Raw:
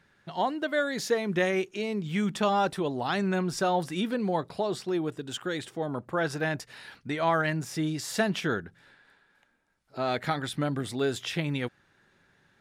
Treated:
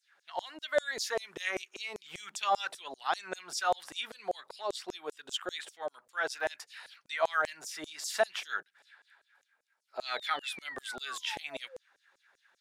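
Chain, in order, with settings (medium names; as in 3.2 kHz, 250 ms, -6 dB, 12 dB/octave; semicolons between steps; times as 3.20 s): painted sound fall, 10.06–11.78 s, 490–4500 Hz -43 dBFS; LFO high-pass saw down 5.1 Hz 490–7700 Hz; trim -4 dB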